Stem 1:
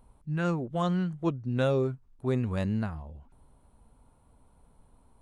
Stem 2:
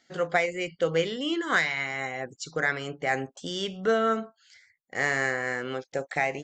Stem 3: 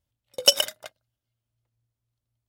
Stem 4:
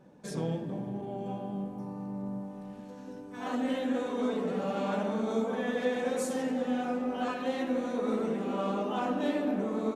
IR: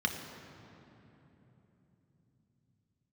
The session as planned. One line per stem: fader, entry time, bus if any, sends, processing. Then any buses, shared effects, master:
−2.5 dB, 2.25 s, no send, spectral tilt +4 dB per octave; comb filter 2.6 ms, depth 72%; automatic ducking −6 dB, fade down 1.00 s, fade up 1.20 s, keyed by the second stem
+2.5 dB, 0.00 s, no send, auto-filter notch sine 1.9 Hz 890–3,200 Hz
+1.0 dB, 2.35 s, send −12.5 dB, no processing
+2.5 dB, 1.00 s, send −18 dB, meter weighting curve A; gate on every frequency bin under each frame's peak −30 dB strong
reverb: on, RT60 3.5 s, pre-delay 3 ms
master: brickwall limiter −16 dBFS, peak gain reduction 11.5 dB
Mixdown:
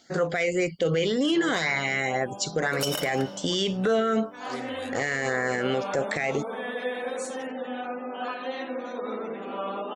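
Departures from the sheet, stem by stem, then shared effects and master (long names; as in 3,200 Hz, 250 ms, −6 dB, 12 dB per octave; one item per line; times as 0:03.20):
stem 2 +2.5 dB → +10.0 dB
stem 4: send off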